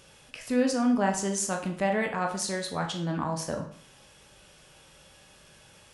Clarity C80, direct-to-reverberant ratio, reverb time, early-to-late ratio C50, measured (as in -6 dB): 12.5 dB, 3.0 dB, 0.55 s, 8.5 dB